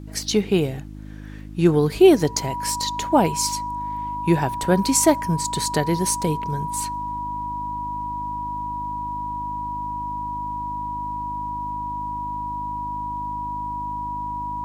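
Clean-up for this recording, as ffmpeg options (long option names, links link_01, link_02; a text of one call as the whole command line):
ffmpeg -i in.wav -af "adeclick=threshold=4,bandreject=frequency=51.6:width_type=h:width=4,bandreject=frequency=103.2:width_type=h:width=4,bandreject=frequency=154.8:width_type=h:width=4,bandreject=frequency=206.4:width_type=h:width=4,bandreject=frequency=258:width_type=h:width=4,bandreject=frequency=309.6:width_type=h:width=4,bandreject=frequency=970:width=30,agate=range=-21dB:threshold=-20dB" out.wav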